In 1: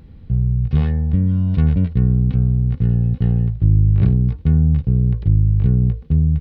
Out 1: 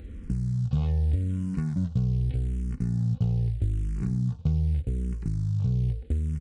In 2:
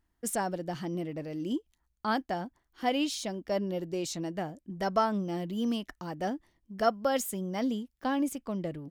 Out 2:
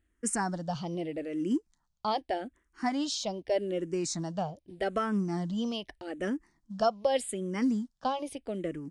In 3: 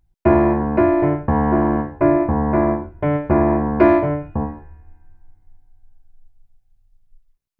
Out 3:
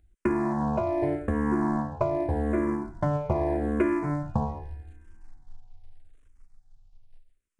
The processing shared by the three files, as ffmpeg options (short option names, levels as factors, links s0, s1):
-filter_complex "[0:a]acompressor=threshold=0.0631:ratio=8,acrusher=bits=9:mode=log:mix=0:aa=0.000001,aresample=22050,aresample=44100,asplit=2[s0][s1];[s1]afreqshift=-0.82[s2];[s0][s2]amix=inputs=2:normalize=1,volume=1.58"